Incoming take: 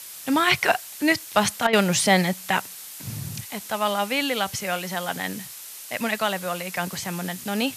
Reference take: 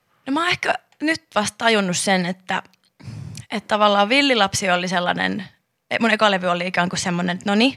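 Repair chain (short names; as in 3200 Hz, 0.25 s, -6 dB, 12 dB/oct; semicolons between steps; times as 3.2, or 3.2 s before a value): clip repair -7 dBFS; interpolate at 1.67, 60 ms; noise print and reduce 24 dB; gain 0 dB, from 3.49 s +8.5 dB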